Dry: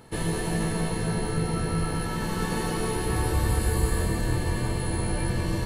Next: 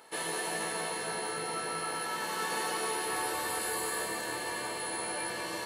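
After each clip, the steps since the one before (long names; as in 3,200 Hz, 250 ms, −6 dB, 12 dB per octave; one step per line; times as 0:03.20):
high-pass filter 600 Hz 12 dB per octave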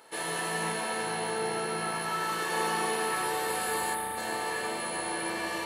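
gain on a spectral selection 0:03.94–0:04.17, 310–8,100 Hz −13 dB
spring reverb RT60 3.1 s, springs 36 ms, chirp 70 ms, DRR −2 dB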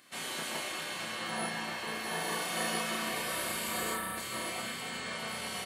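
gate on every frequency bin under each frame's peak −10 dB weak
double-tracking delay 32 ms −4 dB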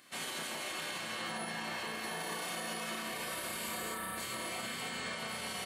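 brickwall limiter −30 dBFS, peak gain reduction 9 dB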